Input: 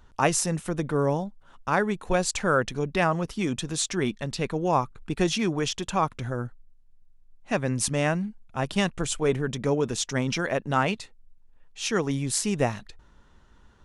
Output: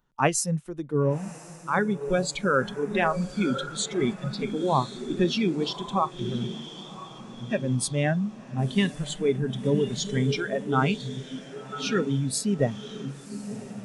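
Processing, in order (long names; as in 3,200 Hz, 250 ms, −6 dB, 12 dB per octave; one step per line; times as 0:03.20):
low shelf with overshoot 110 Hz −7 dB, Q 3
on a send: feedback delay with all-pass diffusion 1,052 ms, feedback 55%, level −4.5 dB
on the sum: noise reduction from a noise print of the clip's start 15 dB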